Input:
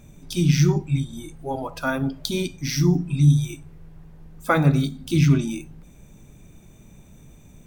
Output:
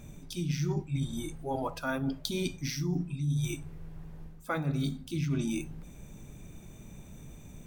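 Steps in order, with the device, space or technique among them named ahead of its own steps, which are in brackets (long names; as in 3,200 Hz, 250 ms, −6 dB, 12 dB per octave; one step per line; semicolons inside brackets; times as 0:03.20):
compression on the reversed sound (reversed playback; downward compressor 6 to 1, threshold −29 dBFS, peak gain reduction 17 dB; reversed playback)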